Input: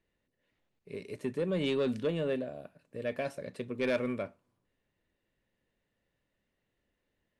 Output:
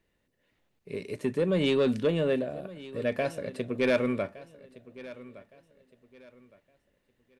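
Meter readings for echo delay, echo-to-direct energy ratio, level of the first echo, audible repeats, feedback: 1,164 ms, −17.5 dB, −18.0 dB, 2, 30%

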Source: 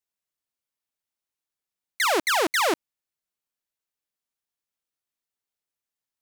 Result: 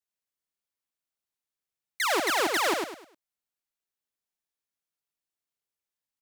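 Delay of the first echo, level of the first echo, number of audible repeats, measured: 102 ms, −4.0 dB, 4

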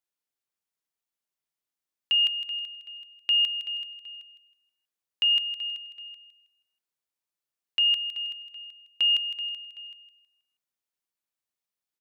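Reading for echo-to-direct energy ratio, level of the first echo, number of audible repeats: −13.0 dB, −13.5 dB, 2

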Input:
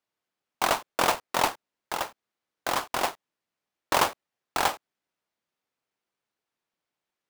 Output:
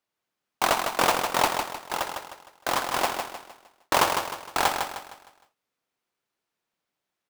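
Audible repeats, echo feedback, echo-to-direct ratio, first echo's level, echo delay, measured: 4, 39%, −5.5 dB, −6.0 dB, 154 ms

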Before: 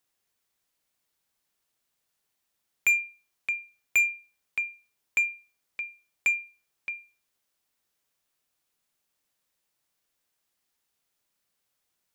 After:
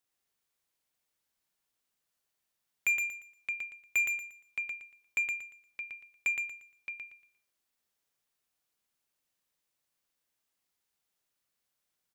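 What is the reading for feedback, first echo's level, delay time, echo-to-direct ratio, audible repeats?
28%, −3.5 dB, 117 ms, −3.0 dB, 3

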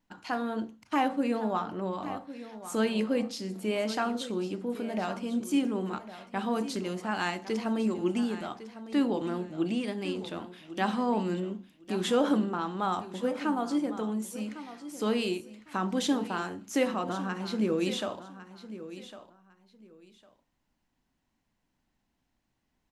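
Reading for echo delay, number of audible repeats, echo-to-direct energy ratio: 1,104 ms, 2, −14.0 dB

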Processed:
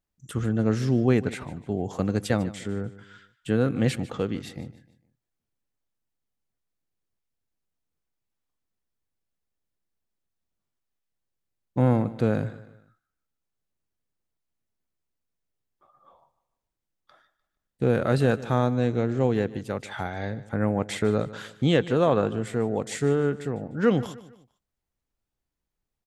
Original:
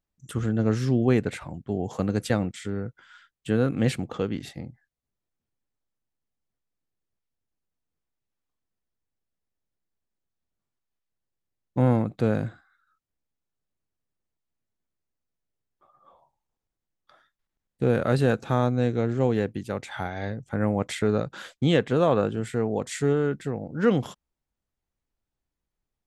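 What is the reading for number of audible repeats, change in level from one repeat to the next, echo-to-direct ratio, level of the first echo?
3, −8.0 dB, −17.0 dB, −17.5 dB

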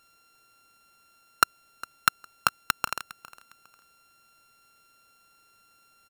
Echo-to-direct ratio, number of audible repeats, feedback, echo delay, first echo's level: −19.0 dB, 2, 27%, 407 ms, −19.5 dB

